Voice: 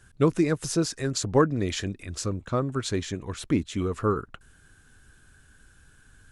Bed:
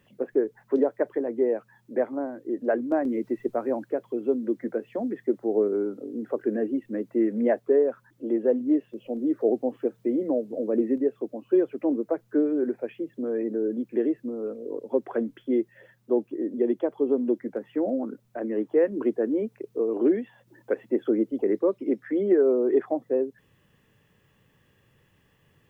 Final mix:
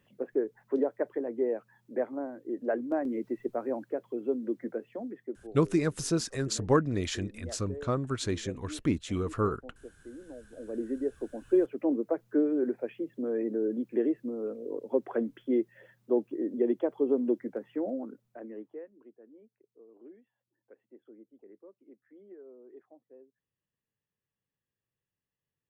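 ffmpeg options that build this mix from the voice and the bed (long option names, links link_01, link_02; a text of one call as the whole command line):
ffmpeg -i stem1.wav -i stem2.wav -filter_complex "[0:a]adelay=5350,volume=-3.5dB[link_01];[1:a]volume=12.5dB,afade=type=out:start_time=4.65:duration=0.91:silence=0.16788,afade=type=in:start_time=10.44:duration=1.08:silence=0.125893,afade=type=out:start_time=17.29:duration=1.61:silence=0.0446684[link_02];[link_01][link_02]amix=inputs=2:normalize=0" out.wav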